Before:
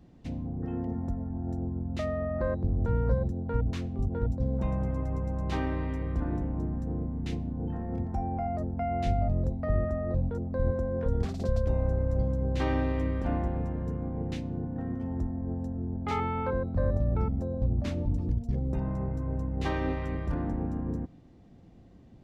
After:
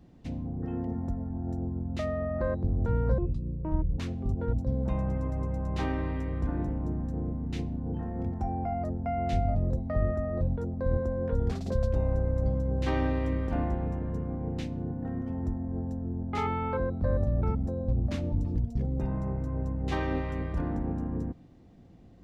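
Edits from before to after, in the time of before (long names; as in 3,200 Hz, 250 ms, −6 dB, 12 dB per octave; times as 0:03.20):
0:03.18–0:03.72: play speed 67%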